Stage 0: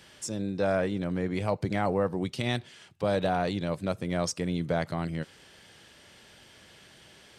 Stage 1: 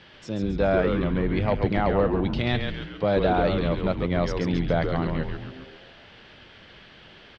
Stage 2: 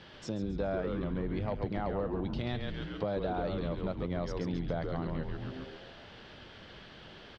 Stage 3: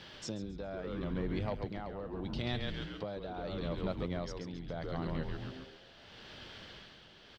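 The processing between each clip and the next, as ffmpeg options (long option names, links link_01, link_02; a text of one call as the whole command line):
ffmpeg -i in.wav -filter_complex "[0:a]asplit=2[link_01][link_02];[link_02]volume=21dB,asoftclip=hard,volume=-21dB,volume=-3.5dB[link_03];[link_01][link_03]amix=inputs=2:normalize=0,lowpass=frequency=4000:width=0.5412,lowpass=frequency=4000:width=1.3066,asplit=8[link_04][link_05][link_06][link_07][link_08][link_09][link_10][link_11];[link_05]adelay=136,afreqshift=-140,volume=-4.5dB[link_12];[link_06]adelay=272,afreqshift=-280,volume=-10.2dB[link_13];[link_07]adelay=408,afreqshift=-420,volume=-15.9dB[link_14];[link_08]adelay=544,afreqshift=-560,volume=-21.5dB[link_15];[link_09]adelay=680,afreqshift=-700,volume=-27.2dB[link_16];[link_10]adelay=816,afreqshift=-840,volume=-32.9dB[link_17];[link_11]adelay=952,afreqshift=-980,volume=-38.6dB[link_18];[link_04][link_12][link_13][link_14][link_15][link_16][link_17][link_18]amix=inputs=8:normalize=0" out.wav
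ffmpeg -i in.wav -af "equalizer=frequency=2300:width=1.3:gain=-5.5,acompressor=threshold=-34dB:ratio=3" out.wav
ffmpeg -i in.wav -af "highshelf=frequency=3400:gain=10,tremolo=f=0.77:d=0.62,volume=-1dB" out.wav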